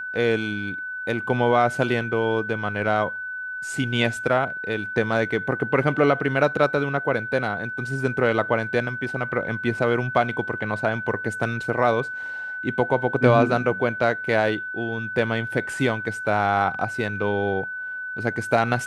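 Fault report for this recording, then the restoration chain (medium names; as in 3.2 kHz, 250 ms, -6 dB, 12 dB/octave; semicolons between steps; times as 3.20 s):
whine 1.5 kHz -29 dBFS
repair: band-stop 1.5 kHz, Q 30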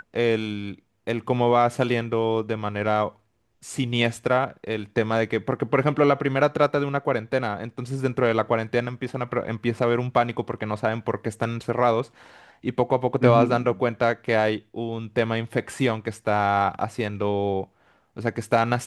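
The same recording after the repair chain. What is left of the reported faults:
nothing left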